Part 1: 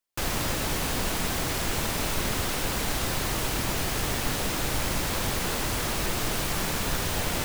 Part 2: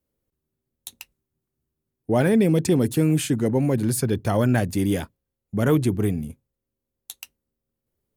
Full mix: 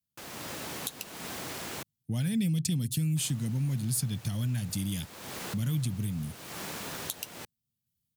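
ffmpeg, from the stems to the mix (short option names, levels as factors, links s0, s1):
-filter_complex "[0:a]volume=0.178,asplit=3[s0][s1][s2];[s0]atrim=end=1.83,asetpts=PTS-STARTPTS,afade=t=out:st=1.826:d=0.004:c=hsin[s3];[s1]atrim=start=1.83:end=3.16,asetpts=PTS-STARTPTS,volume=0[s4];[s2]atrim=start=3.16,asetpts=PTS-STARTPTS,afade=t=in:d=0.004:c=hsin[s5];[s3][s4][s5]concat=n=3:v=0:a=1[s6];[1:a]firequalizer=gain_entry='entry(140,0);entry(370,-29);entry(3200,-2)':delay=0.05:min_phase=1,acompressor=threshold=0.0398:ratio=6,volume=0.794,asplit=2[s7][s8];[s8]apad=whole_len=328493[s9];[s6][s9]sidechaincompress=threshold=0.00316:ratio=4:attack=16:release=301[s10];[s10][s7]amix=inputs=2:normalize=0,highpass=140,dynaudnorm=f=260:g=3:m=2"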